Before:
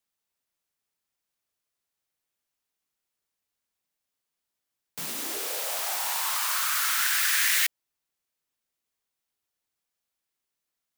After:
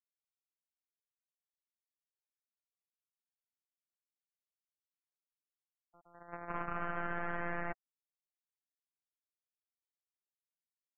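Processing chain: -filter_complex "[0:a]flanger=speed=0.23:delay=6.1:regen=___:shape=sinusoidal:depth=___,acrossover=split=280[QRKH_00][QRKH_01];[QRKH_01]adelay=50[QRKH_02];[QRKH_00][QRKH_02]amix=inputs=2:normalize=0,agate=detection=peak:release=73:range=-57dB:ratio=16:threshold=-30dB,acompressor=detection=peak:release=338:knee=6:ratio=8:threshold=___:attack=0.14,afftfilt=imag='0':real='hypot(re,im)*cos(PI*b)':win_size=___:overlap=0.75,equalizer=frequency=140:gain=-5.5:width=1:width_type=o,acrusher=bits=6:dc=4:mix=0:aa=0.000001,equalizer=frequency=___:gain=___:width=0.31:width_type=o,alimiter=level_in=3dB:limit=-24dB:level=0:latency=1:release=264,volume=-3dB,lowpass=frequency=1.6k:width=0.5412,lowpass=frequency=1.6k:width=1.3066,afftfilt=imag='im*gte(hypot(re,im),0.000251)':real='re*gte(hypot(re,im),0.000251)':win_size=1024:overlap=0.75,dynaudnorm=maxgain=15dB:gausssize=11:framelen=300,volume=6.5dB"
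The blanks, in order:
-18, 2.5, -32dB, 1024, 720, 6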